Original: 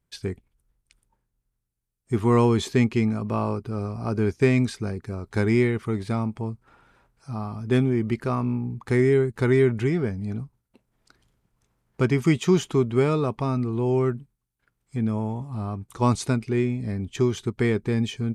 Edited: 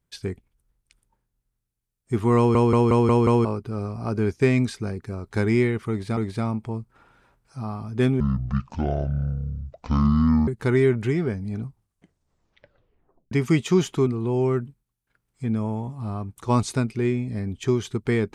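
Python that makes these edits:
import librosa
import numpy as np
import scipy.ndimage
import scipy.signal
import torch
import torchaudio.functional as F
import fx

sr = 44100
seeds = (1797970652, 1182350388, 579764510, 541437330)

y = fx.edit(x, sr, fx.stutter_over(start_s=2.37, slice_s=0.18, count=6),
    fx.repeat(start_s=5.89, length_s=0.28, count=2),
    fx.speed_span(start_s=7.92, length_s=1.32, speed=0.58),
    fx.tape_stop(start_s=10.4, length_s=1.68),
    fx.cut(start_s=12.83, length_s=0.76), tone=tone)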